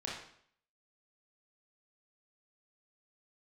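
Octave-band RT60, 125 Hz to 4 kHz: 0.60, 0.65, 0.65, 0.60, 0.60, 0.55 seconds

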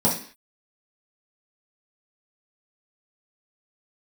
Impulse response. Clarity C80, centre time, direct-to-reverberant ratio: 12.0 dB, 27 ms, −7.5 dB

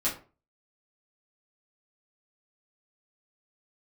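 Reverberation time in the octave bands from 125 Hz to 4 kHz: 0.40, 0.40, 0.40, 0.35, 0.30, 0.25 seconds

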